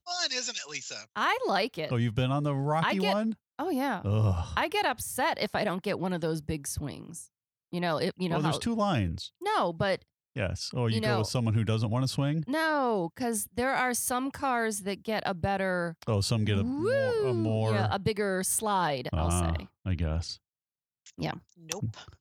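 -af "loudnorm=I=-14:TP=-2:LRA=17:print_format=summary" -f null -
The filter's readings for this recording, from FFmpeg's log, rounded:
Input Integrated:    -30.0 LUFS
Input True Peak:     -10.5 dBTP
Input LRA:             6.0 LU
Input Threshold:     -40.2 LUFS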